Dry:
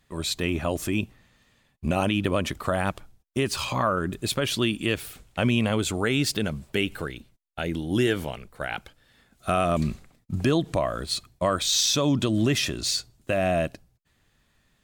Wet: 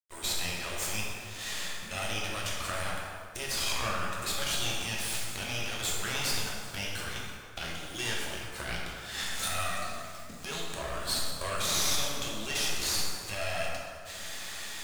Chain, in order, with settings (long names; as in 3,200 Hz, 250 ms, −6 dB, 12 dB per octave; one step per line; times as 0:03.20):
camcorder AGC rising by 67 dB per second
meter weighting curve ITU-R 468
brickwall limiter −11 dBFS, peak gain reduction 11.5 dB
half-wave rectification
bit reduction 8 bits
dense smooth reverb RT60 2.2 s, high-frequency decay 0.55×, DRR −4 dB
level −8 dB